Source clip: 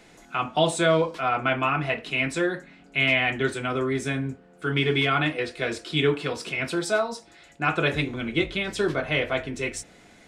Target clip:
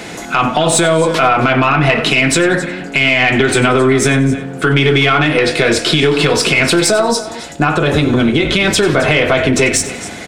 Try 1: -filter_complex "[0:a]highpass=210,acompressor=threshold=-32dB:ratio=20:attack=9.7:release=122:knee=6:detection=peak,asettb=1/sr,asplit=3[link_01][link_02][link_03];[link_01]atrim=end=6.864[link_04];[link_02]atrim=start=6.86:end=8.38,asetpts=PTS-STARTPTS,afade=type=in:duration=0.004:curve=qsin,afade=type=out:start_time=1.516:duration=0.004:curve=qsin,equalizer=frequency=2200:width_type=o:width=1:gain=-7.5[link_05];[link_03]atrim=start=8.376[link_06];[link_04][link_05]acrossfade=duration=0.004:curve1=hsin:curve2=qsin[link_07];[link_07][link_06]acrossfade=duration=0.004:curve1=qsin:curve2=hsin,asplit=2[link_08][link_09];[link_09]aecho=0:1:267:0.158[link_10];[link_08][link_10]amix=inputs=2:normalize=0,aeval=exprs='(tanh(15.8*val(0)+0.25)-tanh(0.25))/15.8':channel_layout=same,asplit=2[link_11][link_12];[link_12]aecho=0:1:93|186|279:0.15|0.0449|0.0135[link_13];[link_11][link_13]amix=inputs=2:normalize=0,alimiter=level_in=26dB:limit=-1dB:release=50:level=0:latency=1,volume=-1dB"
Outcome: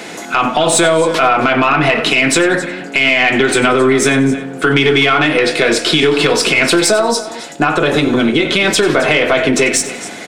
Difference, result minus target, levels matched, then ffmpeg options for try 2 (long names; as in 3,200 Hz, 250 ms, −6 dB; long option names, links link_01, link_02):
125 Hz band −6.0 dB
-filter_complex "[0:a]highpass=61,acompressor=threshold=-32dB:ratio=20:attack=9.7:release=122:knee=6:detection=peak,asettb=1/sr,asplit=3[link_01][link_02][link_03];[link_01]atrim=end=6.864[link_04];[link_02]atrim=start=6.86:end=8.38,asetpts=PTS-STARTPTS,afade=type=in:duration=0.004:curve=qsin,afade=type=out:start_time=1.516:duration=0.004:curve=qsin,equalizer=frequency=2200:width_type=o:width=1:gain=-7.5[link_05];[link_03]atrim=start=8.376[link_06];[link_04][link_05]acrossfade=duration=0.004:curve1=hsin:curve2=qsin[link_07];[link_07][link_06]acrossfade=duration=0.004:curve1=qsin:curve2=hsin,asplit=2[link_08][link_09];[link_09]aecho=0:1:267:0.158[link_10];[link_08][link_10]amix=inputs=2:normalize=0,aeval=exprs='(tanh(15.8*val(0)+0.25)-tanh(0.25))/15.8':channel_layout=same,asplit=2[link_11][link_12];[link_12]aecho=0:1:93|186|279:0.15|0.0449|0.0135[link_13];[link_11][link_13]amix=inputs=2:normalize=0,alimiter=level_in=26dB:limit=-1dB:release=50:level=0:latency=1,volume=-1dB"